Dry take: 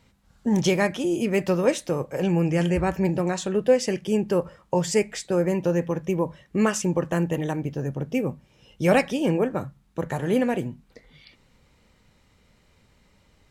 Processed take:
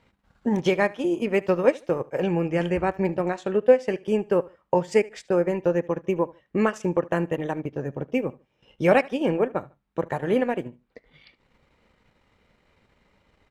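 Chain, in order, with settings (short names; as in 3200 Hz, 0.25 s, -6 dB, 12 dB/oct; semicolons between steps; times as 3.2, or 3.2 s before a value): transient shaper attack +3 dB, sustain -10 dB; tone controls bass -7 dB, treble -13 dB; feedback echo 74 ms, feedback 25%, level -22 dB; gain +1 dB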